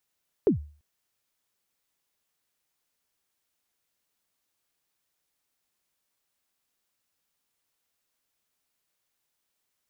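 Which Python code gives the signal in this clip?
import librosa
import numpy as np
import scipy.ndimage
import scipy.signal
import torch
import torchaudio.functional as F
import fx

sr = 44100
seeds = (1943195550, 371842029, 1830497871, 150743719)

y = fx.drum_kick(sr, seeds[0], length_s=0.34, level_db=-14.0, start_hz=470.0, end_hz=74.0, sweep_ms=114.0, decay_s=0.4, click=False)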